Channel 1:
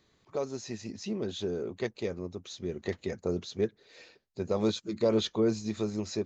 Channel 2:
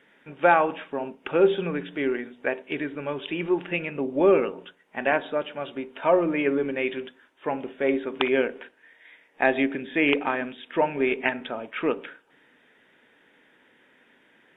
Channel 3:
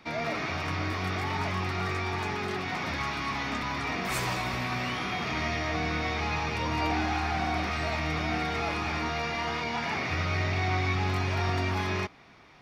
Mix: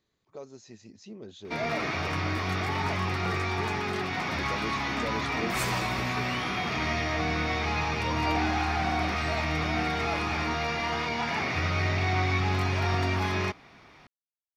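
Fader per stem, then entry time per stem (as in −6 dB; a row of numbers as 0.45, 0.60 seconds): −10.0 dB, muted, +1.5 dB; 0.00 s, muted, 1.45 s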